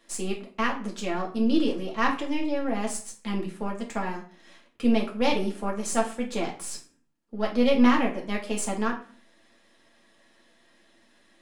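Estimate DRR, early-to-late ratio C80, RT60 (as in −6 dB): −2.0 dB, 15.0 dB, 0.45 s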